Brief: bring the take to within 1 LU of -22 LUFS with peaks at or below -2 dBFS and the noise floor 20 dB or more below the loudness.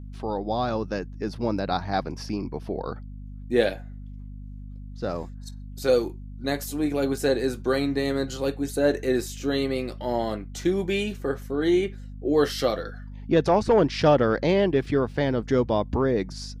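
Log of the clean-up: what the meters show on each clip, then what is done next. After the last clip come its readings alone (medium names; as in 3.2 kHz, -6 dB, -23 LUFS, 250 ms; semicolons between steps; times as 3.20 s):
hum 50 Hz; highest harmonic 250 Hz; hum level -36 dBFS; loudness -25.5 LUFS; peak level -7.0 dBFS; loudness target -22.0 LUFS
-> de-hum 50 Hz, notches 5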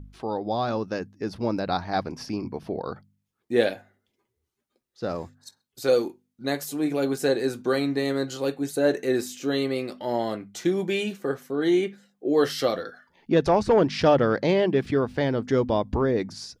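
hum not found; loudness -25.5 LUFS; peak level -6.0 dBFS; loudness target -22.0 LUFS
-> trim +3.5 dB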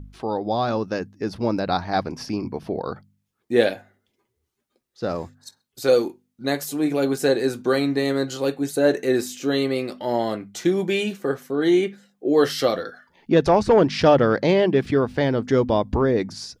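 loudness -22.0 LUFS; peak level -2.5 dBFS; noise floor -77 dBFS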